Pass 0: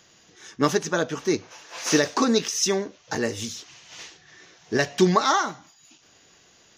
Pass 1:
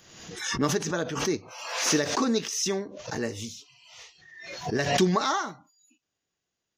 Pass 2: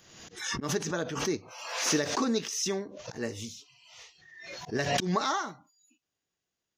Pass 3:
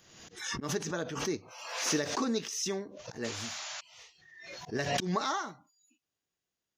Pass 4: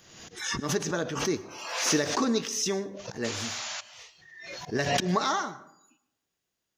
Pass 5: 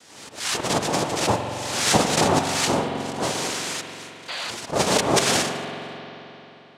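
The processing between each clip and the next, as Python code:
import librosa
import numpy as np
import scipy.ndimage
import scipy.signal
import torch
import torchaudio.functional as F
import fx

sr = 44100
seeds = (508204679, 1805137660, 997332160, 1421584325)

y1 = fx.low_shelf(x, sr, hz=250.0, db=4.5)
y1 = fx.noise_reduce_blind(y1, sr, reduce_db=22)
y1 = fx.pre_swell(y1, sr, db_per_s=56.0)
y1 = y1 * 10.0 ** (-6.5 / 20.0)
y2 = fx.auto_swell(y1, sr, attack_ms=109.0)
y2 = y2 * 10.0 ** (-3.0 / 20.0)
y3 = fx.spec_paint(y2, sr, seeds[0], shape='noise', start_s=3.24, length_s=0.57, low_hz=560.0, high_hz=7300.0, level_db=-38.0)
y3 = y3 * 10.0 ** (-3.0 / 20.0)
y4 = fx.rev_plate(y3, sr, seeds[1], rt60_s=0.77, hf_ratio=0.45, predelay_ms=95, drr_db=17.0)
y4 = y4 * 10.0 ** (5.0 / 20.0)
y5 = fx.noise_vocoder(y4, sr, seeds[2], bands=2)
y5 = fx.rev_spring(y5, sr, rt60_s=3.5, pass_ms=(44,), chirp_ms=55, drr_db=5.5)
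y5 = fx.spec_paint(y5, sr, seeds[3], shape='noise', start_s=4.28, length_s=0.23, low_hz=470.0, high_hz=4900.0, level_db=-37.0)
y5 = y5 * 10.0 ** (6.0 / 20.0)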